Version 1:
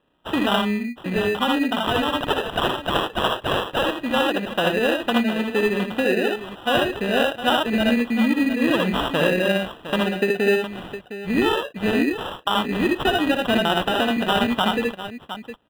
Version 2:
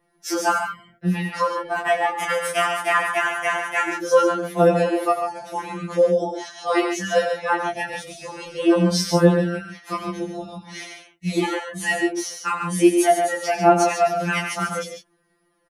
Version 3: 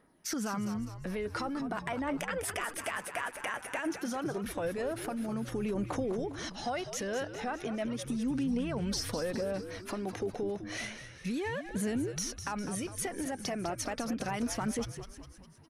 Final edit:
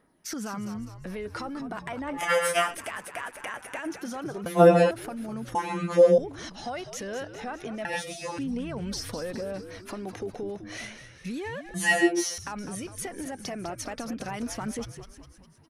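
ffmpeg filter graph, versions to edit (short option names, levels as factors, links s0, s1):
-filter_complex "[1:a]asplit=5[s0][s1][s2][s3][s4];[2:a]asplit=6[s5][s6][s7][s8][s9][s10];[s5]atrim=end=2.34[s11];[s0]atrim=start=2.1:end=2.76[s12];[s6]atrim=start=2.52:end=4.462[s13];[s1]atrim=start=4.458:end=4.912[s14];[s7]atrim=start=4.908:end=5.552[s15];[s2]atrim=start=5.548:end=6.182[s16];[s8]atrim=start=6.178:end=7.852[s17];[s3]atrim=start=7.848:end=8.382[s18];[s9]atrim=start=8.378:end=11.742[s19];[s4]atrim=start=11.738:end=12.382[s20];[s10]atrim=start=12.378[s21];[s11][s12]acrossfade=d=0.24:c1=tri:c2=tri[s22];[s22][s13]acrossfade=d=0.24:c1=tri:c2=tri[s23];[s23][s14]acrossfade=d=0.004:c1=hsin:c2=hsin[s24];[s24][s15]acrossfade=d=0.004:c1=hsin:c2=hsin[s25];[s25][s16]acrossfade=d=0.004:c1=hsin:c2=hsin[s26];[s26][s17]acrossfade=d=0.004:c1=hsin:c2=hsin[s27];[s27][s18]acrossfade=d=0.004:c1=hsin:c2=hsin[s28];[s28][s19]acrossfade=d=0.004:c1=hsin:c2=hsin[s29];[s29][s20]acrossfade=d=0.004:c1=hsin:c2=hsin[s30];[s30][s21]acrossfade=d=0.004:c1=hsin:c2=hsin"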